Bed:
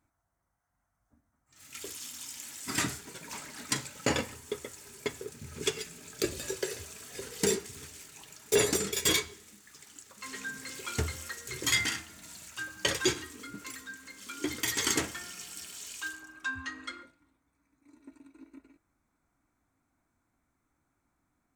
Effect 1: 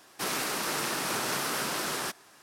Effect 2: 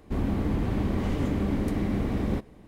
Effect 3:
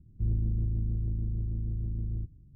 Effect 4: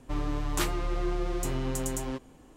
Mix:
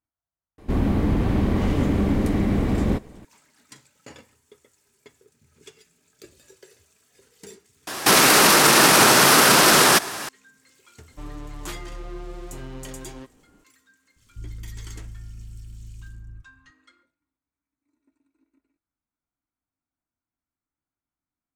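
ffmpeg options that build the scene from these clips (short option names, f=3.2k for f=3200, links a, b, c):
-filter_complex "[0:a]volume=-16.5dB[a];[2:a]acontrast=78[b];[1:a]alimiter=level_in=29dB:limit=-1dB:release=50:level=0:latency=1[c];[3:a]lowshelf=f=140:g=11.5[d];[a]asplit=2[e][f];[e]atrim=end=7.874[g];[c]atrim=end=2.42,asetpts=PTS-STARTPTS,volume=-4dB[h];[f]atrim=start=10.286[i];[b]atrim=end=2.67,asetpts=PTS-STARTPTS,volume=-1dB,afade=t=in:d=0.004:c=hsin,afade=t=out:st=2.666:d=0.004:c=hsin,adelay=580[j];[4:a]atrim=end=2.56,asetpts=PTS-STARTPTS,volume=-6dB,afade=t=in:d=0.004:c=hsin,afade=t=out:st=2.556:d=0.004:c=hsin,adelay=11080[k];[d]atrim=end=2.55,asetpts=PTS-STARTPTS,volume=-17dB,afade=t=in:d=0.004:c=hsin,afade=t=out:st=2.546:d=0.004:c=hsin,adelay=14160[l];[g][h]acrossfade=d=0.004:c1=hsin:c2=hsin[m];[m][i]acrossfade=d=0.004:c1=hsin:c2=hsin[n];[n][j][k][l]amix=inputs=4:normalize=0"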